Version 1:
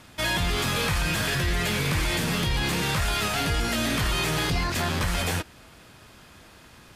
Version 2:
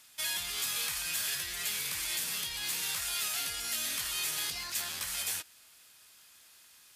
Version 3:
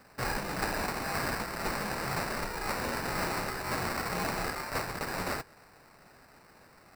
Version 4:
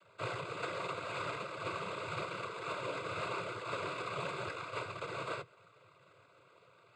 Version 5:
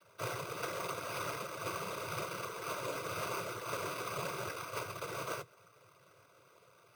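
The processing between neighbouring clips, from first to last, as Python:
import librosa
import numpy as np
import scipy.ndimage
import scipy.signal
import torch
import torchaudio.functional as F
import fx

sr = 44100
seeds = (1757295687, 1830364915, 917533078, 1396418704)

y1 = scipy.signal.lfilter([1.0, -0.97], [1.0], x)
y2 = fx.sample_hold(y1, sr, seeds[0], rate_hz=3300.0, jitter_pct=0)
y2 = F.gain(torch.from_numpy(y2), 1.5).numpy()
y3 = fx.noise_vocoder(y2, sr, seeds[1], bands=16)
y3 = fx.fixed_phaser(y3, sr, hz=1200.0, stages=8)
y3 = F.gain(torch.from_numpy(y3), -1.5).numpy()
y4 = np.repeat(y3[::6], 6)[:len(y3)]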